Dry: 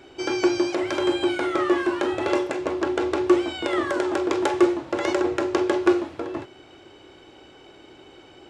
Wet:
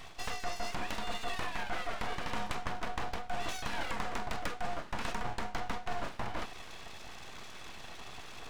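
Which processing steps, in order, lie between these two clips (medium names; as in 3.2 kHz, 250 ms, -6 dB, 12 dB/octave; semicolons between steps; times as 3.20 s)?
reverse; compression 8:1, threshold -34 dBFS, peak gain reduction 21 dB; reverse; high-pass 340 Hz 12 dB/octave; full-wave rectifier; trim +5 dB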